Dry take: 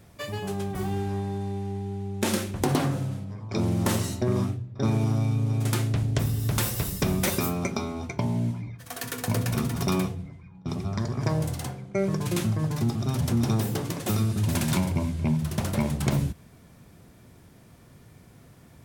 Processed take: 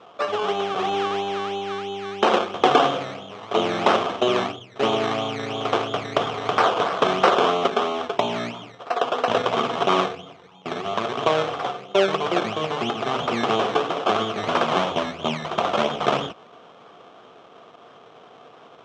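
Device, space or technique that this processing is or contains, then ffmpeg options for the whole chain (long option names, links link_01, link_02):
circuit-bent sampling toy: -af "acrusher=samples=18:mix=1:aa=0.000001:lfo=1:lforange=10.8:lforate=3,highpass=420,equalizer=frequency=450:width_type=q:width=4:gain=8,equalizer=frequency=710:width_type=q:width=4:gain=9,equalizer=frequency=1200:width_type=q:width=4:gain=10,equalizer=frequency=1900:width_type=q:width=4:gain=-5,equalizer=frequency=3200:width_type=q:width=4:gain=8,equalizer=frequency=4600:width_type=q:width=4:gain=-8,lowpass=frequency=5400:width=0.5412,lowpass=frequency=5400:width=1.3066,volume=7.5dB"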